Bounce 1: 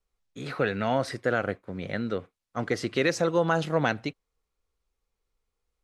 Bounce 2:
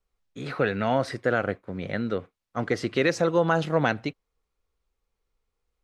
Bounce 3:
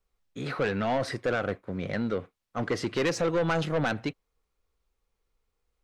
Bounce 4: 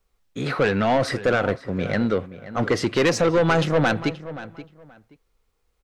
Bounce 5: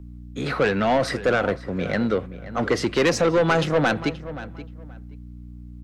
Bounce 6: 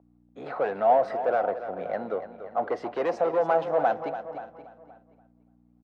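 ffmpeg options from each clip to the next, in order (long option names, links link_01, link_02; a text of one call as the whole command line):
ffmpeg -i in.wav -af "highshelf=frequency=5500:gain=-6.5,volume=2dB" out.wav
ffmpeg -i in.wav -af "asoftclip=type=tanh:threshold=-22dB,volume=1dB" out.wav
ffmpeg -i in.wav -filter_complex "[0:a]asplit=2[link_01][link_02];[link_02]adelay=527,lowpass=frequency=3000:poles=1,volume=-14.5dB,asplit=2[link_03][link_04];[link_04]adelay=527,lowpass=frequency=3000:poles=1,volume=0.21[link_05];[link_01][link_03][link_05]amix=inputs=3:normalize=0,volume=7.5dB" out.wav
ffmpeg -i in.wav -filter_complex "[0:a]aeval=exprs='val(0)+0.0141*(sin(2*PI*60*n/s)+sin(2*PI*2*60*n/s)/2+sin(2*PI*3*60*n/s)/3+sin(2*PI*4*60*n/s)/4+sin(2*PI*5*60*n/s)/5)':channel_layout=same,acrossover=split=150|1600[link_01][link_02][link_03];[link_01]asoftclip=type=tanh:threshold=-34dB[link_04];[link_04][link_02][link_03]amix=inputs=3:normalize=0" out.wav
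ffmpeg -i in.wav -filter_complex "[0:a]bandpass=frequency=720:width_type=q:width=3.5:csg=0,asplit=2[link_01][link_02];[link_02]aecho=0:1:288|576|864:0.266|0.0585|0.0129[link_03];[link_01][link_03]amix=inputs=2:normalize=0,volume=3.5dB" out.wav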